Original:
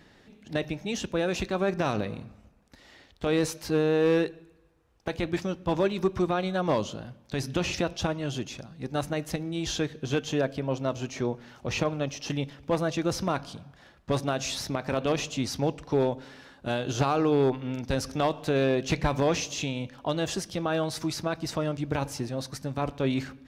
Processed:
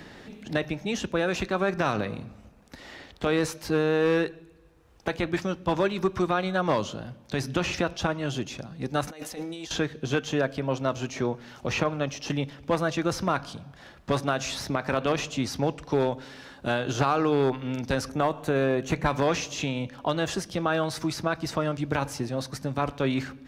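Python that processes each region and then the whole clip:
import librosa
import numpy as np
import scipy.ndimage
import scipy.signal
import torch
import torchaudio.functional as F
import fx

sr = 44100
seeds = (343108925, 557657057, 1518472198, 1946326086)

y = fx.chain(x, sr, fx.bass_treble(bass_db=-12, treble_db=6),
    fx.over_compress(threshold_db=-42.0, ratio=-1.0),
    fx.comb(ms=4.0, depth=0.35), at=(9.07, 9.71))
y = fx.chain(y, sr, fx.peak_eq(hz=3600.0, db=-7.5, octaves=1.6),
    fx.notch(hz=5100.0, q=6.2), at=(18.09, 19.06))
y = fx.dynamic_eq(y, sr, hz=1400.0, q=1.1, threshold_db=-42.0, ratio=4.0, max_db=6)
y = fx.band_squash(y, sr, depth_pct=40)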